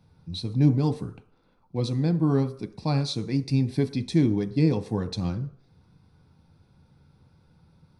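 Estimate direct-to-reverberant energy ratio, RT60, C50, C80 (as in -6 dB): 8.0 dB, 0.55 s, 15.5 dB, 18.0 dB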